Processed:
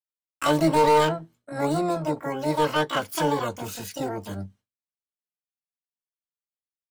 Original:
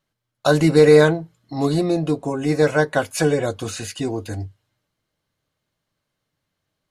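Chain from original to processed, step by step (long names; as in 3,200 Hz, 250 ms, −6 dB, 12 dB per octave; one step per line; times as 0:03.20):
gain into a clipping stage and back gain 9.5 dB
downward expander −43 dBFS
pitch-shifted copies added +12 semitones 0 dB
level −8 dB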